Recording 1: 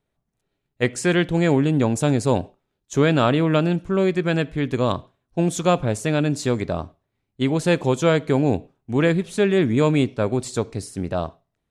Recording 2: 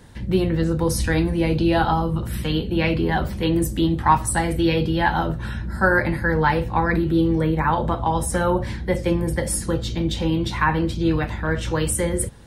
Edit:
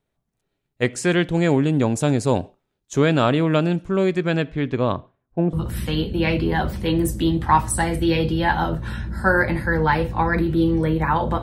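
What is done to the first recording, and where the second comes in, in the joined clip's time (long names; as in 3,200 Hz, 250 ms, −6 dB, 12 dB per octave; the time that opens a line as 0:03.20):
recording 1
0:04.22–0:05.53: low-pass filter 8,000 Hz → 1,100 Hz
0:05.53: continue with recording 2 from 0:02.10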